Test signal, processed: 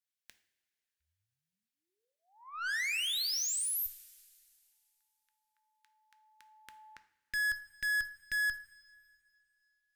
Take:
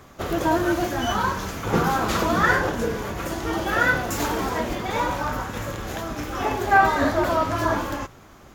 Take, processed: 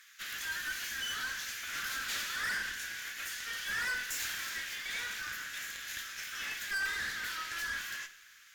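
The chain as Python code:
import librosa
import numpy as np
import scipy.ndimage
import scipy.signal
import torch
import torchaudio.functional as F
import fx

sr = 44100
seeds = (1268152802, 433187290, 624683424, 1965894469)

y = scipy.signal.sosfilt(scipy.signal.ellip(4, 1.0, 60, 1600.0, 'highpass', fs=sr, output='sos'), x)
y = fx.tube_stage(y, sr, drive_db=33.0, bias=0.4)
y = fx.rev_double_slope(y, sr, seeds[0], early_s=0.51, late_s=2.6, knee_db=-16, drr_db=9.5)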